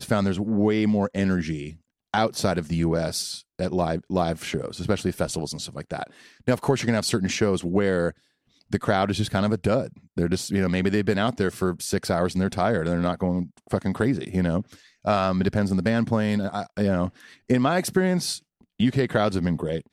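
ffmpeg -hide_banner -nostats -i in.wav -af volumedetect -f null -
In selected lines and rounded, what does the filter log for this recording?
mean_volume: -24.4 dB
max_volume: -9.0 dB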